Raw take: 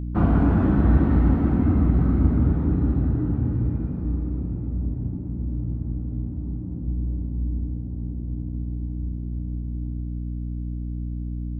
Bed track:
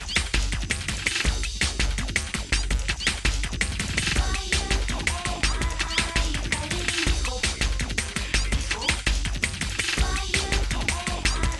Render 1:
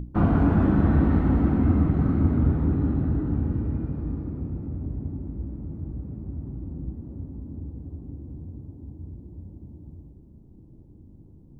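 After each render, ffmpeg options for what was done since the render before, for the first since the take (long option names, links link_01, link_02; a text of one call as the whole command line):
ffmpeg -i in.wav -af "bandreject=frequency=60:width_type=h:width=6,bandreject=frequency=120:width_type=h:width=6,bandreject=frequency=180:width_type=h:width=6,bandreject=frequency=240:width_type=h:width=6,bandreject=frequency=300:width_type=h:width=6,bandreject=frequency=360:width_type=h:width=6" out.wav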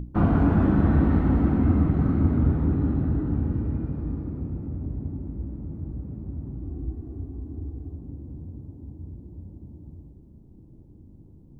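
ffmpeg -i in.wav -filter_complex "[0:a]asettb=1/sr,asplit=3[link_01][link_02][link_03];[link_01]atrim=end=6.644[link_04];[link_02]atrim=start=6.64:end=7.92,asetpts=PTS-STARTPTS,afade=type=in:duration=0.004:curve=qsin,afade=type=out:start_time=1.276:duration=0.004:curve=qsin,aecho=1:1:2.7:0.65,atrim=end_sample=56448[link_05];[link_03]atrim=start=7.916[link_06];[link_04][link_05]acrossfade=duration=0.004:curve1=hsin:curve2=qsin[link_07];[link_07][link_06]acrossfade=duration=0.004:curve1=qsin:curve2=hsin" out.wav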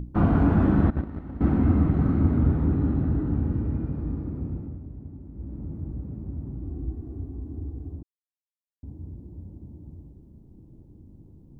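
ffmpeg -i in.wav -filter_complex "[0:a]asettb=1/sr,asplit=3[link_01][link_02][link_03];[link_01]atrim=end=0.904[link_04];[link_02]atrim=start=0.9:end=1.41,asetpts=PTS-STARTPTS,afade=type=in:duration=0.004:curve=qsin,afade=type=out:start_time=0.506:duration=0.004:curve=qsin,agate=range=-17dB:threshold=-17dB:ratio=16:release=100:detection=peak[link_05];[link_03]atrim=start=1.406[link_06];[link_04][link_05]acrossfade=duration=0.004:curve1=hsin:curve2=qsin[link_07];[link_07][link_06]acrossfade=duration=0.004:curve1=qsin:curve2=hsin,asplit=5[link_08][link_09][link_10][link_11][link_12];[link_08]atrim=end=4.83,asetpts=PTS-STARTPTS,afade=type=out:start_time=4.53:duration=0.3:silence=0.375837[link_13];[link_09]atrim=start=4.83:end=5.31,asetpts=PTS-STARTPTS,volume=-8.5dB[link_14];[link_10]atrim=start=5.31:end=8.03,asetpts=PTS-STARTPTS,afade=type=in:duration=0.3:silence=0.375837,afade=type=out:start_time=2.716:duration=0.004:curve=hsin[link_15];[link_11]atrim=start=8.03:end=8.83,asetpts=PTS-STARTPTS,volume=0[link_16];[link_12]atrim=start=8.83,asetpts=PTS-STARTPTS,afade=type=in:duration=0.004:curve=hsin[link_17];[link_13][link_14][link_15][link_16][link_17]concat=n=5:v=0:a=1" out.wav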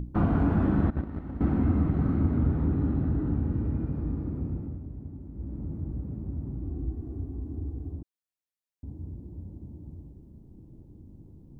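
ffmpeg -i in.wav -af "acompressor=threshold=-27dB:ratio=1.5" out.wav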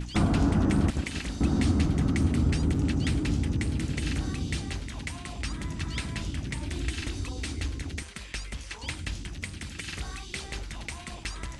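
ffmpeg -i in.wav -i bed.wav -filter_complex "[1:a]volume=-12.5dB[link_01];[0:a][link_01]amix=inputs=2:normalize=0" out.wav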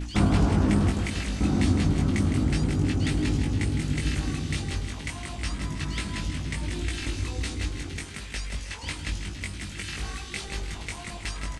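ffmpeg -i in.wav -filter_complex "[0:a]asplit=2[link_01][link_02];[link_02]adelay=20,volume=-3dB[link_03];[link_01][link_03]amix=inputs=2:normalize=0,asplit=2[link_04][link_05];[link_05]aecho=0:1:160|320|480|640|800|960:0.355|0.188|0.0997|0.0528|0.028|0.0148[link_06];[link_04][link_06]amix=inputs=2:normalize=0" out.wav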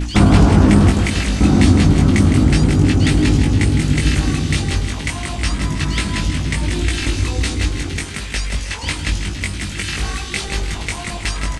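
ffmpeg -i in.wav -af "volume=11.5dB,alimiter=limit=-1dB:level=0:latency=1" out.wav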